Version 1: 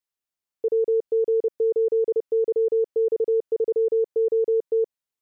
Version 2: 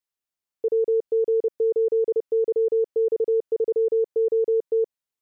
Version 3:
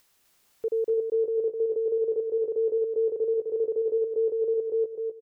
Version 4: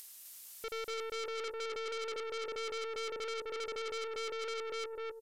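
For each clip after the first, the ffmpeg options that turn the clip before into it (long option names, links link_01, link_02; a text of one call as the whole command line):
ffmpeg -i in.wav -af anull out.wav
ffmpeg -i in.wav -af "acompressor=mode=upward:threshold=-38dB:ratio=2.5,aecho=1:1:256|512|768|1024|1280:0.562|0.247|0.109|0.0479|0.0211,volume=-5dB" out.wav
ffmpeg -i in.wav -af "aeval=exprs='(tanh(70.8*val(0)+0.35)-tanh(0.35))/70.8':channel_layout=same,crystalizer=i=9.5:c=0,aresample=32000,aresample=44100,volume=-4.5dB" out.wav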